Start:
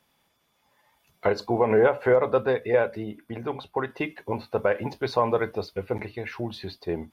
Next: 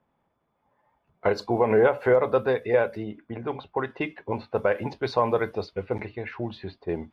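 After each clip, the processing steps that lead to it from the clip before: low-pass opened by the level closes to 1100 Hz, open at -21 dBFS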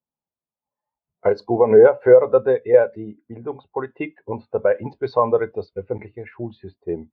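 spectral expander 1.5:1; gain +7.5 dB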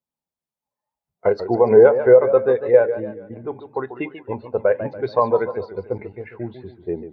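warbling echo 0.143 s, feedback 44%, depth 143 cents, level -11.5 dB

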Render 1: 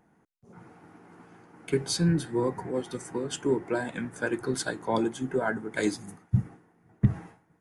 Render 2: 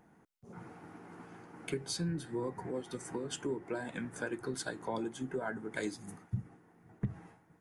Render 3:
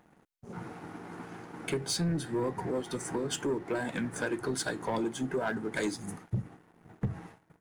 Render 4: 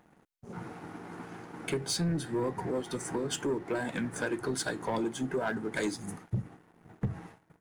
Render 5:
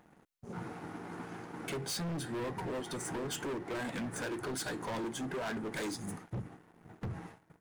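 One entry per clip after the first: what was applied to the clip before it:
compressor 2.5:1, threshold -40 dBFS, peak gain reduction 16 dB; gain +1 dB
sample leveller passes 2
nothing audible
hard clip -35 dBFS, distortion -7 dB

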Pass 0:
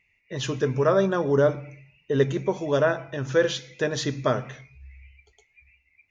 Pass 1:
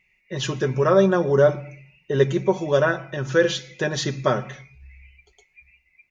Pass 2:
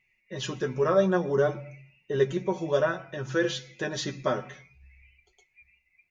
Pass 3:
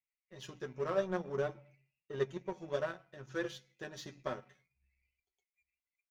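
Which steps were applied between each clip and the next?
comb 5.4 ms, depth 58%; gain +2 dB
flange 0.56 Hz, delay 7.9 ms, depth 4.4 ms, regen +32%; gain -2.5 dB
de-hum 96.78 Hz, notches 3; power-law curve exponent 1.4; gain -8.5 dB

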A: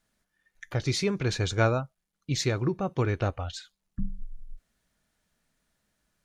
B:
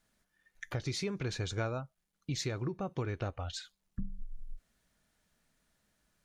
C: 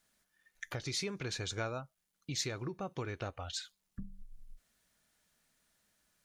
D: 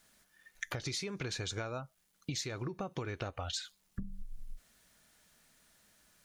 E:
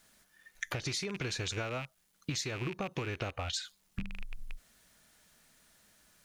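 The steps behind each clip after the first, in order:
compressor 3:1, threshold -35 dBFS, peak gain reduction 12.5 dB
tilt +1.5 dB/oct; gain -1 dB
compressor 16:1, threshold -43 dBFS, peak gain reduction 13 dB; gain +8.5 dB
rattling part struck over -46 dBFS, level -33 dBFS; gain +2 dB

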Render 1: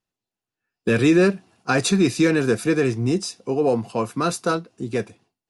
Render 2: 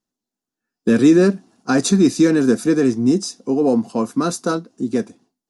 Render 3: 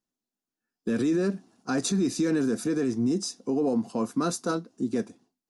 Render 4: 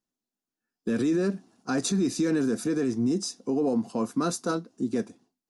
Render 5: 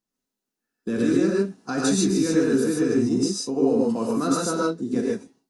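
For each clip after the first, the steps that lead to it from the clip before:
fifteen-band EQ 100 Hz -9 dB, 250 Hz +11 dB, 2500 Hz -8 dB, 6300 Hz +5 dB
limiter -12.5 dBFS, peak gain reduction 10 dB; gain -5.5 dB
nothing audible
non-linear reverb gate 0.17 s rising, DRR -3.5 dB

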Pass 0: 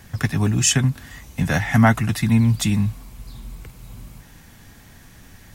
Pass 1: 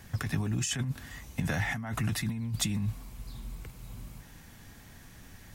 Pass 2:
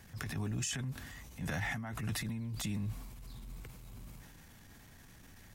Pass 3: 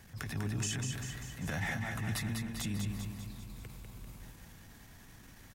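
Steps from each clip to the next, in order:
negative-ratio compressor -22 dBFS, ratio -1; gain -9 dB
transient shaper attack -11 dB, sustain +4 dB; gain -5 dB
feedback echo 0.197 s, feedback 57%, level -5 dB

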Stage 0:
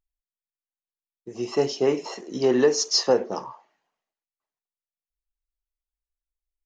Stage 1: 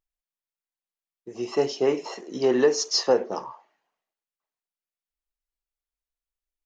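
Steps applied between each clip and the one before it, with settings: tone controls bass -5 dB, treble -3 dB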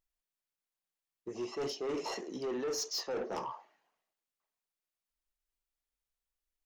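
reverse; compressor 12:1, threshold -28 dBFS, peak gain reduction 15 dB; reverse; soft clip -31.5 dBFS, distortion -11 dB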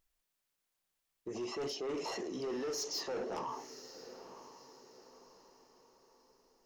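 limiter -41 dBFS, peak gain reduction 9.5 dB; diffused feedback echo 0.954 s, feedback 41%, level -13 dB; gain +7 dB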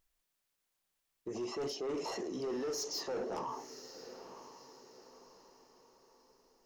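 dynamic EQ 2700 Hz, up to -4 dB, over -55 dBFS, Q 0.79; gain +1 dB

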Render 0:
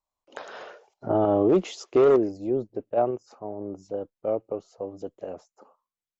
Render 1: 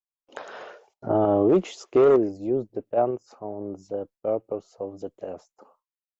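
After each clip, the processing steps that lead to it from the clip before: gate with hold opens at -49 dBFS; dynamic EQ 4600 Hz, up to -4 dB, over -52 dBFS, Q 1.1; gain +1 dB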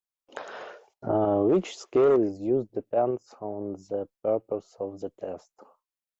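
limiter -14.5 dBFS, peak gain reduction 4.5 dB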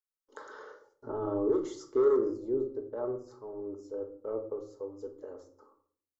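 fixed phaser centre 690 Hz, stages 6; shoebox room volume 560 m³, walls furnished, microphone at 1.5 m; gain -6.5 dB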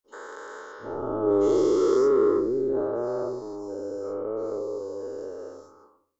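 spectral dilation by 0.48 s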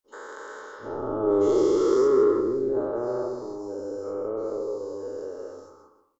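echo 0.162 s -9.5 dB

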